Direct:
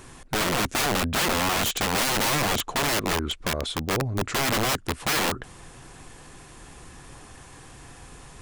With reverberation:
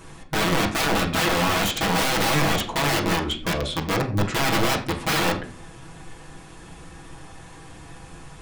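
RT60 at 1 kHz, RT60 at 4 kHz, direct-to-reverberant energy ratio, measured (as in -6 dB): 0.35 s, 0.25 s, -3.5 dB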